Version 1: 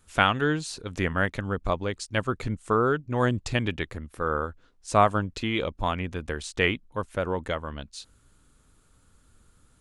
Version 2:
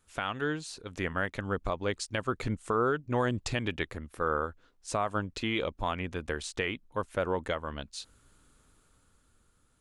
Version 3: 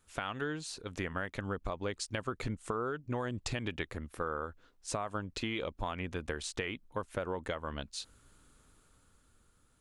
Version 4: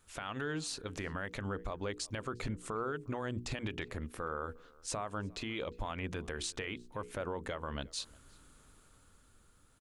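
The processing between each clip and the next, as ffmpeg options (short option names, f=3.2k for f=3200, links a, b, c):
-af "bass=f=250:g=-4,treble=f=4k:g=-1,dynaudnorm=f=140:g=17:m=7.5dB,alimiter=limit=-12.5dB:level=0:latency=1:release=182,volume=-6dB"
-af "acompressor=threshold=-32dB:ratio=6"
-filter_complex "[0:a]bandreject=f=60:t=h:w=6,bandreject=f=120:t=h:w=6,bandreject=f=180:t=h:w=6,bandreject=f=240:t=h:w=6,bandreject=f=300:t=h:w=6,bandreject=f=360:t=h:w=6,bandreject=f=420:t=h:w=6,bandreject=f=480:t=h:w=6,alimiter=level_in=7dB:limit=-24dB:level=0:latency=1:release=66,volume=-7dB,asplit=2[a][b];[b]adelay=355.7,volume=-24dB,highshelf=f=4k:g=-8[c];[a][c]amix=inputs=2:normalize=0,volume=3dB"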